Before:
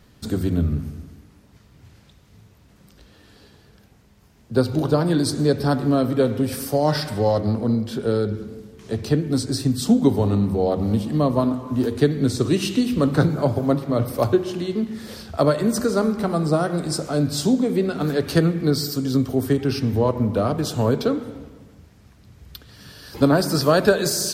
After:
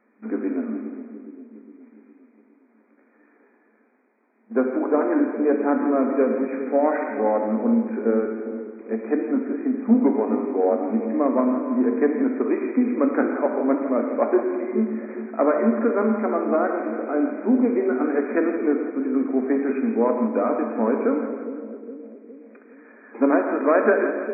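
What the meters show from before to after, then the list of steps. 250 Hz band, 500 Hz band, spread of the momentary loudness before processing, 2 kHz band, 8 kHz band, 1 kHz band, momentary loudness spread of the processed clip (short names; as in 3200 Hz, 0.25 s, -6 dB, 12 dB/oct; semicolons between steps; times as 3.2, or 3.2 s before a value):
0.0 dB, +0.5 dB, 7 LU, +0.5 dB, under -40 dB, +1.0 dB, 11 LU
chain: sample leveller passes 1; split-band echo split 520 Hz, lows 0.411 s, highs 0.167 s, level -10 dB; FFT band-pass 210–2500 Hz; non-linear reverb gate 0.16 s flat, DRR 6 dB; gain -4 dB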